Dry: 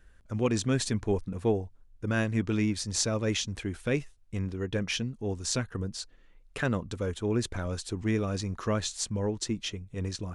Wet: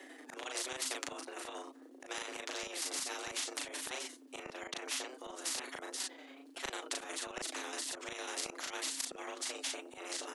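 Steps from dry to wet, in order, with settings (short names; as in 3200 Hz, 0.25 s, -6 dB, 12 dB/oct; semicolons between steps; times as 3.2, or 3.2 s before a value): chopper 11 Hz, depth 60%, duty 40%; frequency shift +250 Hz; flange 1.5 Hz, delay 5.1 ms, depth 2.4 ms, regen +17%; auto swell 0.127 s; doubler 37 ms -3 dB; spectral compressor 4:1; gain +2.5 dB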